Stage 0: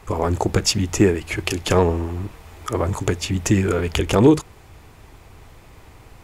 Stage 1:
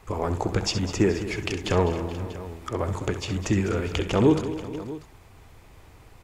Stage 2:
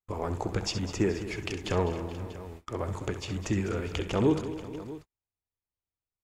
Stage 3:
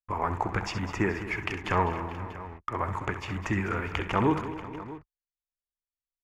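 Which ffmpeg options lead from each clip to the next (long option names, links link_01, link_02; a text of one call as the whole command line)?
ffmpeg -i in.wav -filter_complex "[0:a]acrossover=split=6900[link_01][link_02];[link_02]acompressor=threshold=-48dB:ratio=4:attack=1:release=60[link_03];[link_01][link_03]amix=inputs=2:normalize=0,aecho=1:1:66|203|267|426|484|640:0.282|0.211|0.15|0.1|0.119|0.15,volume=-6dB" out.wav
ffmpeg -i in.wav -af "agate=range=-43dB:threshold=-38dB:ratio=16:detection=peak,volume=-5.5dB" out.wav
ffmpeg -i in.wav -af "anlmdn=0.001,equalizer=frequency=500:width_type=o:width=1:gain=-5,equalizer=frequency=1000:width_type=o:width=1:gain=10,equalizer=frequency=2000:width_type=o:width=1:gain=9,equalizer=frequency=4000:width_type=o:width=1:gain=-7,equalizer=frequency=8000:width_type=o:width=1:gain=-7" out.wav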